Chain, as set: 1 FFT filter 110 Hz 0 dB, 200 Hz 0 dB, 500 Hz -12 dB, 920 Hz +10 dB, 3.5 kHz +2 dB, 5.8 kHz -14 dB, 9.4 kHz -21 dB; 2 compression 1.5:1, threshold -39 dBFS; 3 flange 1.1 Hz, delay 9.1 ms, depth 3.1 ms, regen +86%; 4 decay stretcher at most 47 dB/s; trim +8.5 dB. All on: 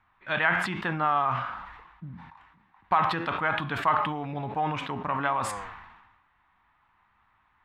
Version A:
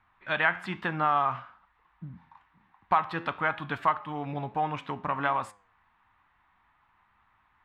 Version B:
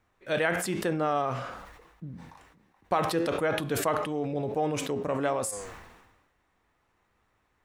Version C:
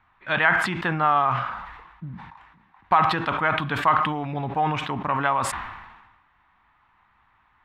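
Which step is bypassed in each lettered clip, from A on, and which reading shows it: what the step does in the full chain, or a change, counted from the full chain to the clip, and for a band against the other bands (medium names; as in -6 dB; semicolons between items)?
4, crest factor change +2.0 dB; 1, crest factor change -3.0 dB; 3, loudness change +4.5 LU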